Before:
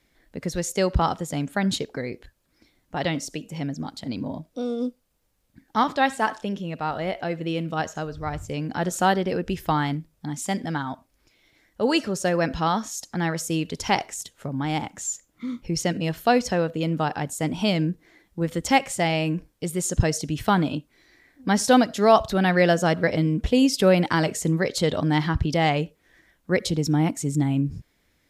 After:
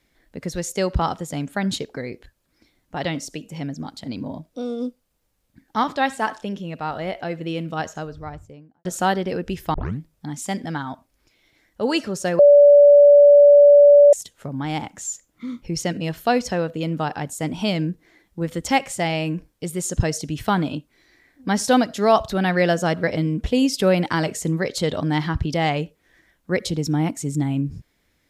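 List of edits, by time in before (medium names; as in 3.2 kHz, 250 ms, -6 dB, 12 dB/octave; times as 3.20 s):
7.88–8.85 s: studio fade out
9.74 s: tape start 0.25 s
12.39–14.13 s: bleep 577 Hz -6.5 dBFS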